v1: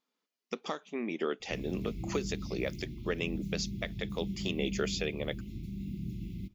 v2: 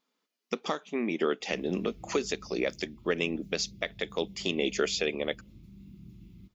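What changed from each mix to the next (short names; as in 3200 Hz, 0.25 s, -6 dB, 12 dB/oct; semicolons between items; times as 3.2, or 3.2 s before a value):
speech +5.0 dB; background -11.0 dB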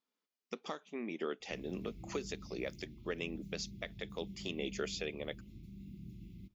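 speech -10.5 dB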